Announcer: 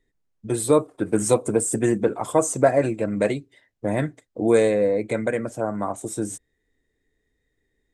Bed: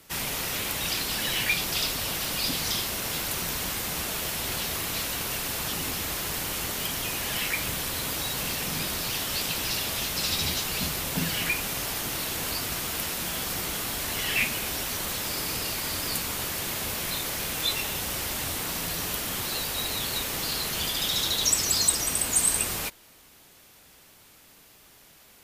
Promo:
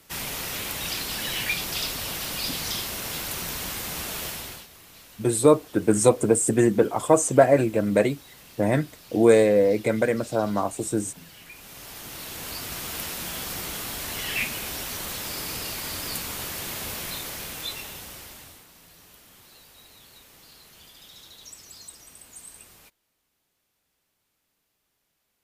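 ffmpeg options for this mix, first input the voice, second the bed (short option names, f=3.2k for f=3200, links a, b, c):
-filter_complex "[0:a]adelay=4750,volume=1.5dB[a];[1:a]volume=15.5dB,afade=t=out:st=4.25:d=0.42:silence=0.133352,afade=t=in:st=11.49:d=1.46:silence=0.141254,afade=t=out:st=16.93:d=1.74:silence=0.105925[b];[a][b]amix=inputs=2:normalize=0"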